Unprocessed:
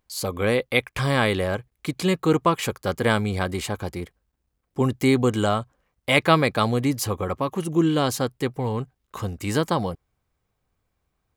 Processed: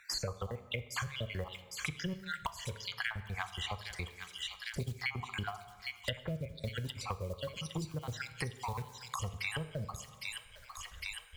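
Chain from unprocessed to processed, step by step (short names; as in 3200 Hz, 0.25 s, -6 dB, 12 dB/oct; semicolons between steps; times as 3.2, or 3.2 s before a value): random spectral dropouts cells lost 61%; treble ducked by the level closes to 360 Hz, closed at -20.5 dBFS; passive tone stack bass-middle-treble 10-0-10; de-hum 419.5 Hz, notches 3; short-mantissa float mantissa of 4-bit; on a send: thin delay 0.808 s, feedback 43%, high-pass 3600 Hz, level -7 dB; on the sum: plate-style reverb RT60 0.89 s, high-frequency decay 0.7×, DRR 11 dB; three-band squash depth 100%; gain +4 dB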